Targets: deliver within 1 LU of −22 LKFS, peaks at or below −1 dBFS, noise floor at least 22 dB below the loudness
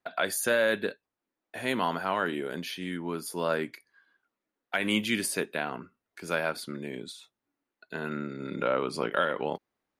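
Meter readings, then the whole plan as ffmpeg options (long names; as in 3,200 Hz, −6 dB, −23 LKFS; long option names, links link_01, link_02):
integrated loudness −30.5 LKFS; sample peak −12.5 dBFS; target loudness −22.0 LKFS
→ -af "volume=8.5dB"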